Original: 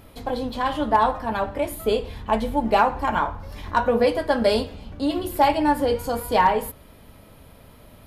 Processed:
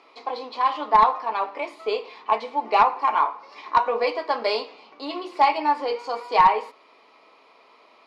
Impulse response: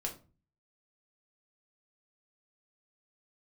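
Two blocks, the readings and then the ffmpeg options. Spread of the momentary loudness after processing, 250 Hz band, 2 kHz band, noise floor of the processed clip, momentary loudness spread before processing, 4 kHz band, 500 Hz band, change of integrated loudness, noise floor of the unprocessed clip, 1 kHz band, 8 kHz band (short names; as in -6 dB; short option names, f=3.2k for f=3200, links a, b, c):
14 LU, -12.5 dB, -1.5 dB, -55 dBFS, 9 LU, -1.0 dB, -4.5 dB, 0.0 dB, -49 dBFS, +2.0 dB, under -15 dB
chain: -af "highpass=f=400:w=0.5412,highpass=f=400:w=1.3066,equalizer=f=560:t=q:w=4:g=-8,equalizer=f=1.1k:t=q:w=4:g=8,equalizer=f=1.6k:t=q:w=4:g=-9,equalizer=f=2.3k:t=q:w=4:g=6,equalizer=f=3.3k:t=q:w=4:g=-5,equalizer=f=4.7k:t=q:w=4:g=3,lowpass=f=5.3k:w=0.5412,lowpass=f=5.3k:w=1.3066,aeval=exprs='0.562*(cos(1*acos(clip(val(0)/0.562,-1,1)))-cos(1*PI/2))+0.112*(cos(2*acos(clip(val(0)/0.562,-1,1)))-cos(2*PI/2))+0.0355*(cos(4*acos(clip(val(0)/0.562,-1,1)))-cos(4*PI/2))':c=same"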